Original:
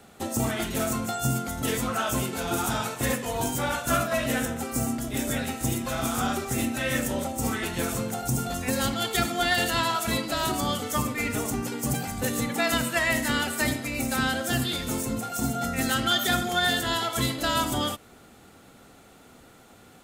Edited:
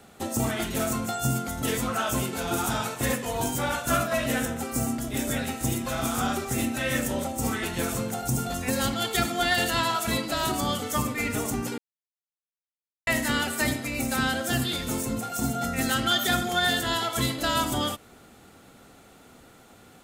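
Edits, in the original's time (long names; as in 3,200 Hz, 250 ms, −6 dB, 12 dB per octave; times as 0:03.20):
0:11.78–0:13.07: silence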